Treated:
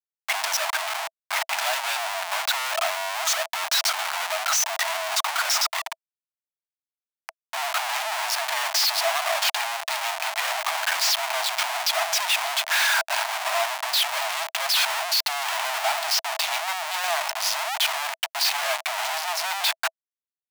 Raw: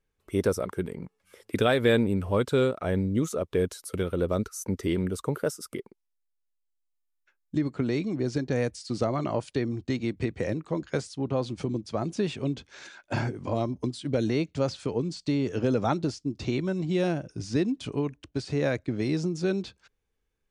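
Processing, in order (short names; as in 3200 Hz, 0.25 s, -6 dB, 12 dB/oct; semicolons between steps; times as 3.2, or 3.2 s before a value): LPF 6000 Hz 24 dB/oct; power-law curve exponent 0.5; Schmitt trigger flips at -33.5 dBFS; rippled Chebyshev high-pass 640 Hz, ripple 3 dB; gain +3.5 dB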